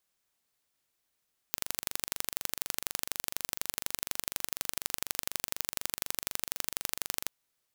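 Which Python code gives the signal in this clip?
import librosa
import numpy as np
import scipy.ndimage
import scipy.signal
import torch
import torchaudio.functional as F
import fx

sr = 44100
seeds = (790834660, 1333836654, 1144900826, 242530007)

y = fx.impulse_train(sr, length_s=5.75, per_s=24.1, accent_every=2, level_db=-2.5)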